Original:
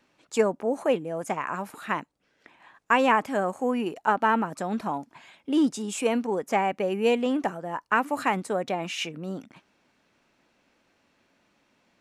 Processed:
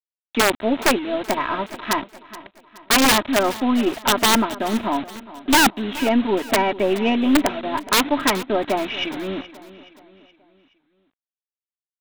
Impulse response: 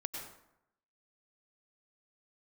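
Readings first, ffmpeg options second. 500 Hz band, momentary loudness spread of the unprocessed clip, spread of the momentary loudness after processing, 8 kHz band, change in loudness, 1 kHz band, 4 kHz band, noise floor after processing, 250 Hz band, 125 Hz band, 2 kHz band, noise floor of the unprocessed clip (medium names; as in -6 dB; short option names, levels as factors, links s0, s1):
+4.0 dB, 10 LU, 11 LU, +15.5 dB, +7.0 dB, +4.5 dB, +15.5 dB, under -85 dBFS, +7.5 dB, +4.0 dB, +7.5 dB, -69 dBFS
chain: -filter_complex "[0:a]lowshelf=f=170:g=10.5,aecho=1:1:3.1:0.95,aresample=8000,acrusher=bits=5:mix=0:aa=0.000001,aresample=44100,aeval=exprs='(mod(3.98*val(0)+1,2)-1)/3.98':c=same,aeval=exprs='0.266*(cos(1*acos(clip(val(0)/0.266,-1,1)))-cos(1*PI/2))+0.0168*(cos(4*acos(clip(val(0)/0.266,-1,1)))-cos(4*PI/2))':c=same,asplit=2[s0][s1];[s1]aecho=0:1:423|846|1269|1692:0.141|0.0636|0.0286|0.0129[s2];[s0][s2]amix=inputs=2:normalize=0,volume=1.41"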